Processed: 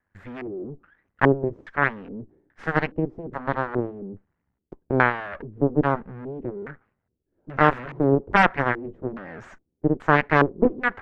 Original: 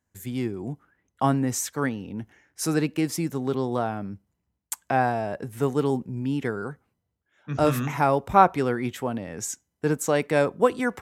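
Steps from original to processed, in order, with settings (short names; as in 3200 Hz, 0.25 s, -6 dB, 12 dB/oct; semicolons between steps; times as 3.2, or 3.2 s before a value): half-wave rectifier; added harmonics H 4 -11 dB, 5 -18 dB, 8 -7 dB, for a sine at -2 dBFS; LFO low-pass square 1.2 Hz 380–1700 Hz; gain +1 dB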